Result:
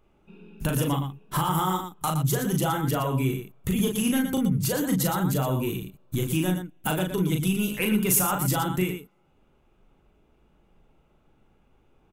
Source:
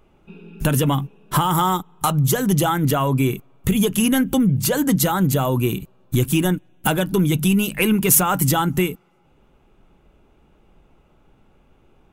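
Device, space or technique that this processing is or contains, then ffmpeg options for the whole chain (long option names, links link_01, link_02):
slapback doubling: -filter_complex "[0:a]asplit=3[link_01][link_02][link_03];[link_02]adelay=38,volume=-4dB[link_04];[link_03]adelay=117,volume=-8dB[link_05];[link_01][link_04][link_05]amix=inputs=3:normalize=0,volume=-8.5dB"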